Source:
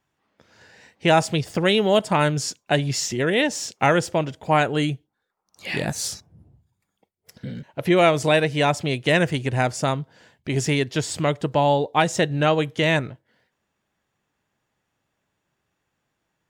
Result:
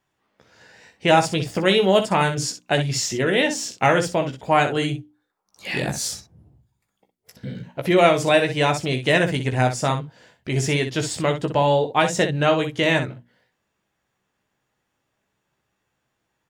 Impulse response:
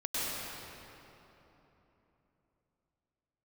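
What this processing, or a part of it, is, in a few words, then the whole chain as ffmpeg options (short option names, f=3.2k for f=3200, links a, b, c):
slapback doubling: -filter_complex "[0:a]asplit=3[a][b][c];[b]adelay=16,volume=-6.5dB[d];[c]adelay=62,volume=-9.5dB[e];[a][d][e]amix=inputs=3:normalize=0,bandreject=f=60:t=h:w=6,bandreject=f=120:t=h:w=6,bandreject=f=180:t=h:w=6,bandreject=f=240:t=h:w=6,bandreject=f=300:t=h:w=6"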